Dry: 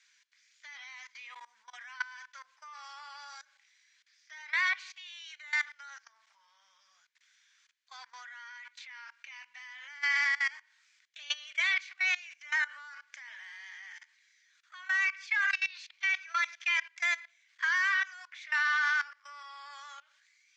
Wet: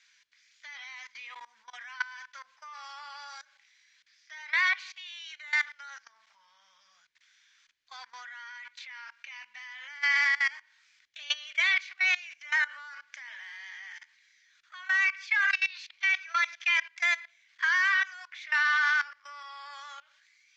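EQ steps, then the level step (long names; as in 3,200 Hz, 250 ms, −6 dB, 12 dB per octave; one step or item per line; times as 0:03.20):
high-frequency loss of the air 94 metres
low-shelf EQ 480 Hz +11.5 dB
high-shelf EQ 2,200 Hz +8 dB
0.0 dB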